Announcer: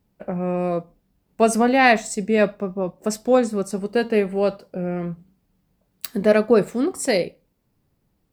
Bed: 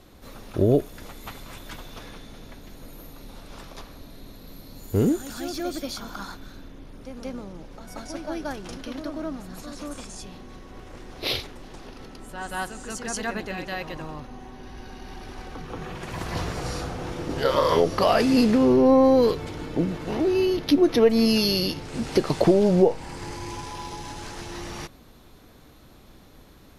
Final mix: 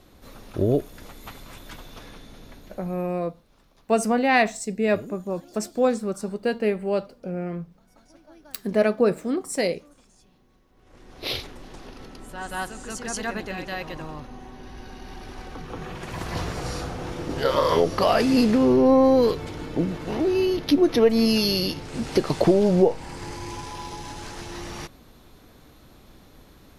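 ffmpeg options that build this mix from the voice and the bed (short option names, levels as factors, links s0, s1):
-filter_complex "[0:a]adelay=2500,volume=0.631[s0];[1:a]volume=7.08,afade=t=out:st=2.56:d=0.64:silence=0.141254,afade=t=in:st=10.77:d=0.71:silence=0.112202[s1];[s0][s1]amix=inputs=2:normalize=0"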